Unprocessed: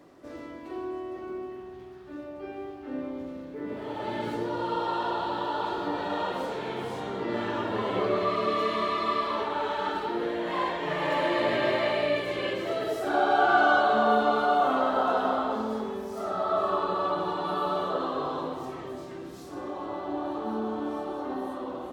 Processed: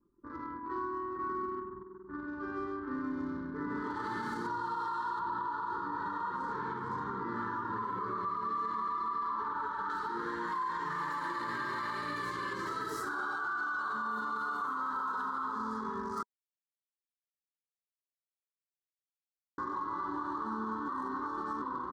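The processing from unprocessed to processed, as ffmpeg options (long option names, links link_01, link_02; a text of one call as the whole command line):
ffmpeg -i in.wav -filter_complex "[0:a]asettb=1/sr,asplit=3[link_01][link_02][link_03];[link_01]atrim=end=1.064[link_04];[link_02]atrim=start=1.06:end=4.47,asetpts=PTS-STARTPTS,afade=type=in:duration=0.004:curve=qsin,afade=type=out:start_time=3.406:duration=0.004:curve=qsin,aecho=1:1:133|266|399|532:0.708|0.212|0.0637|0.0191,atrim=end_sample=150381[link_05];[link_03]atrim=start=4.466[link_06];[link_04][link_05]acrossfade=duration=0.004:curve1=hsin:curve2=qsin[link_07];[link_07][link_06]acrossfade=duration=0.004:curve1=qsin:curve2=hsin,asettb=1/sr,asplit=3[link_08][link_09][link_10];[link_08]atrim=end=5.194[link_11];[link_09]atrim=start=5.19:end=9.9,asetpts=PTS-STARTPTS,afade=type=in:duration=0.004:curve=qsin,afade=type=out:start_time=4.706:duration=0.004:curve=qsin,highshelf=frequency=2500:gain=-12[link_12];[link_10]atrim=start=9.896[link_13];[link_11][link_12]acrossfade=duration=0.004:curve1=hsin:curve2=qsin[link_14];[link_14][link_13]acrossfade=duration=0.004:curve1=qsin:curve2=hsin,asplit=5[link_15][link_16][link_17][link_18][link_19];[link_15]atrim=end=16.23,asetpts=PTS-STARTPTS,afade=type=out:start_time=16.226:duration=0.004:curve=hsin[link_20];[link_16]atrim=start=16.23:end=19.58,asetpts=PTS-STARTPTS,volume=0[link_21];[link_17]atrim=start=19.58:end=20.882,asetpts=PTS-STARTPTS,afade=type=in:duration=0.004:curve=hsin[link_22];[link_18]atrim=start=20.878:end=21.622,asetpts=PTS-STARTPTS,areverse[link_23];[link_19]atrim=start=21.618[link_24];[link_20][link_21][link_22]concat=n=3:v=0:a=1[link_25];[link_25][link_23]acrossfade=duration=0.004:curve1=hsin:curve2=hsin[link_26];[link_26][link_24]acrossfade=duration=0.004:curve1=hsin:curve2=hsin,anlmdn=0.158,firequalizer=gain_entry='entry(210,0);entry(430,-6);entry(680,-25);entry(970,12);entry(1600,8);entry(2500,-15);entry(4400,4);entry(6900,7)':delay=0.05:min_phase=1,alimiter=level_in=4dB:limit=-24dB:level=0:latency=1:release=149,volume=-4dB" out.wav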